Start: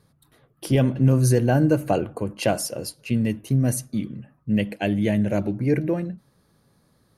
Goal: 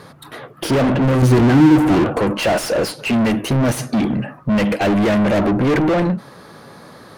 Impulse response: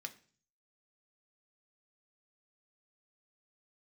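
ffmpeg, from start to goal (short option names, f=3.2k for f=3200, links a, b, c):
-filter_complex "[0:a]asettb=1/sr,asplit=3[a][b][c];[a]atrim=end=1.224[d];[b]atrim=start=1.22:end=2.04,asetpts=PTS-STARTPTS,afade=t=in:d=0.004:c=qsin,afade=t=out:st=0.816:d=0.004:c=qsin,lowshelf=f=410:t=q:w=3:g=9[e];[c]atrim=start=2.036[f];[d][e]acrossfade=d=0.004:c1=hsin:c2=qsin[g];[g][f]acrossfade=d=0.004:c1=qsin:c2=hsin,asplit=2[h][i];[i]highpass=f=720:p=1,volume=38dB,asoftclip=type=tanh:threshold=-7.5dB[j];[h][j]amix=inputs=2:normalize=0,lowpass=f=1.7k:p=1,volume=-6dB,volume=-1dB"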